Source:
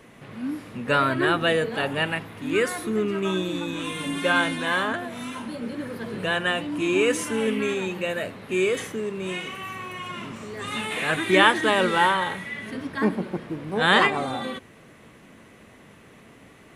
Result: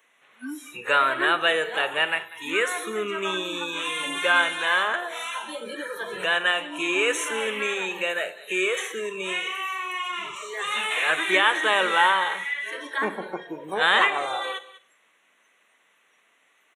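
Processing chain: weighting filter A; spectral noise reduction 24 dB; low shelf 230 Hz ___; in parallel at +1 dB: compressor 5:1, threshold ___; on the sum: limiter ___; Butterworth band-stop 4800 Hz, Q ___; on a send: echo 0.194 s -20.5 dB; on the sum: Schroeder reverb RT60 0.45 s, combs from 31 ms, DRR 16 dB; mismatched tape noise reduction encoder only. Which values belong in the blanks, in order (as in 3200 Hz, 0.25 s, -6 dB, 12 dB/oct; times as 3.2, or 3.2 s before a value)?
-10.5 dB, -35 dBFS, -8.5 dBFS, 2.7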